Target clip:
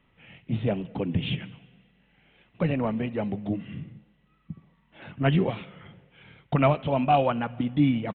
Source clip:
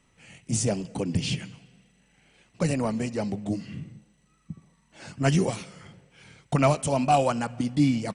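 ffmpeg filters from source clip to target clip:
-af "aresample=8000,aresample=44100"

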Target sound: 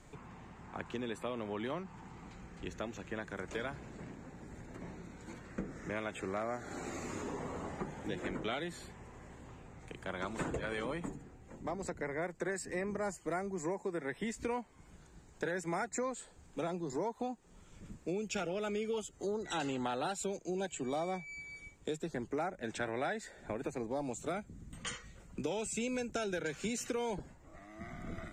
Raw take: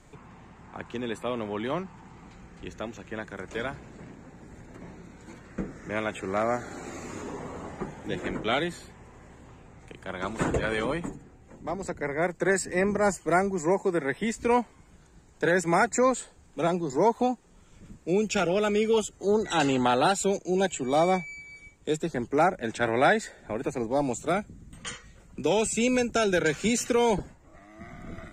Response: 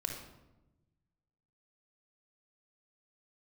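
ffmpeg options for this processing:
-af "acompressor=threshold=-33dB:ratio=4,volume=-2.5dB"

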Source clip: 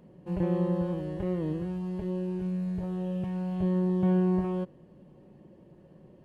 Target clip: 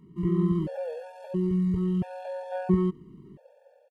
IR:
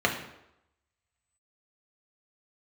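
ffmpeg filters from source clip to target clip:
-af "atempo=1.6,dynaudnorm=f=160:g=5:m=5dB,afftfilt=real='re*gt(sin(2*PI*0.74*pts/sr)*(1-2*mod(floor(b*sr/1024/460),2)),0)':imag='im*gt(sin(2*PI*0.74*pts/sr)*(1-2*mod(floor(b*sr/1024/460),2)),0)':win_size=1024:overlap=0.75,volume=1.5dB"

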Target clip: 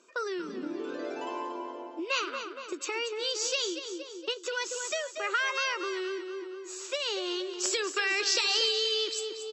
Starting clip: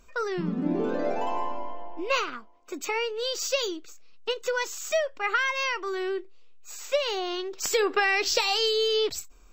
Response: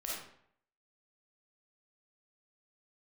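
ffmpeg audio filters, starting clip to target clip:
-filter_complex "[0:a]highpass=f=280:w=0.5412,highpass=f=280:w=1.3066,equalizer=f=350:t=q:w=4:g=9,equalizer=f=760:t=q:w=4:g=-6,equalizer=f=2.1k:t=q:w=4:g=-6,lowpass=f=9.6k:w=0.5412,lowpass=f=9.6k:w=1.3066,aecho=1:1:234|468|702|936|1170:0.299|0.143|0.0688|0.033|0.0158,acrossover=split=1400[a][b];[a]acompressor=threshold=-34dB:ratio=6[c];[c][b]amix=inputs=2:normalize=0"

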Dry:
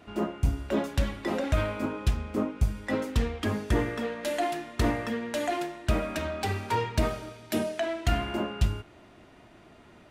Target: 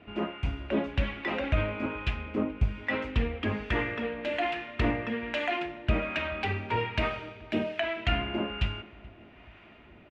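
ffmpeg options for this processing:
-filter_complex "[0:a]acrossover=split=670[a][b];[a]aeval=exprs='val(0)*(1-0.5/2+0.5/2*cos(2*PI*1.2*n/s))':c=same[c];[b]aeval=exprs='val(0)*(1-0.5/2-0.5/2*cos(2*PI*1.2*n/s))':c=same[d];[c][d]amix=inputs=2:normalize=0,lowpass=f=2.6k:t=q:w=2.9,asplit=2[e][f];[f]adelay=429,lowpass=f=1.1k:p=1,volume=-20.5dB,asplit=2[g][h];[h]adelay=429,lowpass=f=1.1k:p=1,volume=0.54,asplit=2[i][j];[j]adelay=429,lowpass=f=1.1k:p=1,volume=0.54,asplit=2[k][l];[l]adelay=429,lowpass=f=1.1k:p=1,volume=0.54[m];[e][g][i][k][m]amix=inputs=5:normalize=0"

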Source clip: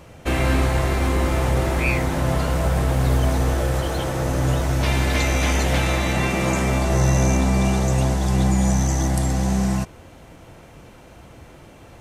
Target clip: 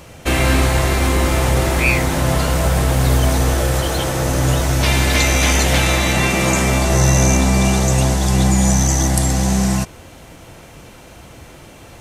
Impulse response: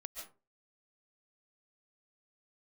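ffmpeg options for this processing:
-filter_complex "[0:a]asplit=2[a][b];[1:a]atrim=start_sample=2205,atrim=end_sample=3969,highshelf=f=2.1k:g=11.5[c];[b][c]afir=irnorm=-1:irlink=0,volume=5.5dB[d];[a][d]amix=inputs=2:normalize=0,volume=-2dB"

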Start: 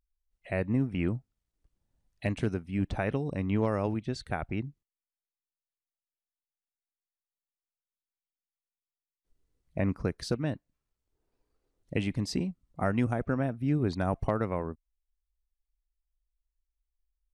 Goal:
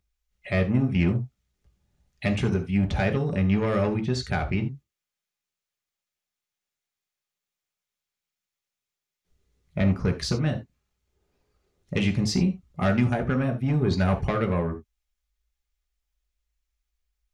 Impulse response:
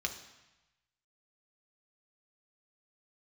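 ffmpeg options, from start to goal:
-filter_complex "[0:a]asoftclip=type=tanh:threshold=-24dB[a];[1:a]atrim=start_sample=2205,afade=t=out:st=0.14:d=0.01,atrim=end_sample=6615[b];[a][b]afir=irnorm=-1:irlink=0,volume=7dB"

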